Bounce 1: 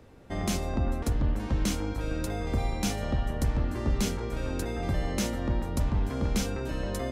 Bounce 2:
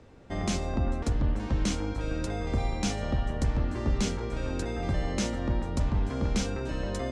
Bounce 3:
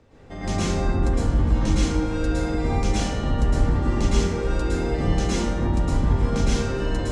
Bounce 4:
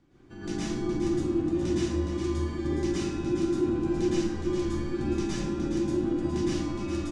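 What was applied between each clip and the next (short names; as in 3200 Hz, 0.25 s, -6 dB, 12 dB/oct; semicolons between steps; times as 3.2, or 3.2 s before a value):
LPF 8300 Hz 24 dB/oct
plate-style reverb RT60 1.1 s, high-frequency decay 0.55×, pre-delay 0.1 s, DRR -9 dB; gain -3 dB
frequency shift -390 Hz; echo 0.416 s -7 dB; gain -8 dB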